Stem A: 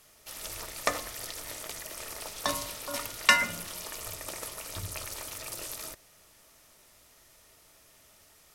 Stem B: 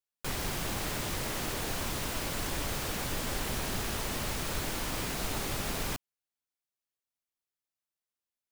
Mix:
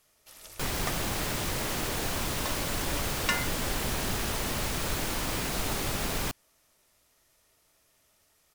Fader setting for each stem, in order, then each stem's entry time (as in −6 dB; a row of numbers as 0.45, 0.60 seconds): −8.5, +3.0 decibels; 0.00, 0.35 seconds